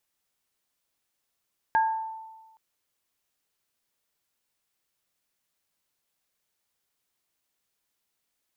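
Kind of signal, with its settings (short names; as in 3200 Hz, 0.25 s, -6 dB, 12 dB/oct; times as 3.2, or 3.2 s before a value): sine partials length 0.82 s, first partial 887 Hz, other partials 1630 Hz, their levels -6 dB, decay 1.28 s, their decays 0.44 s, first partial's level -18 dB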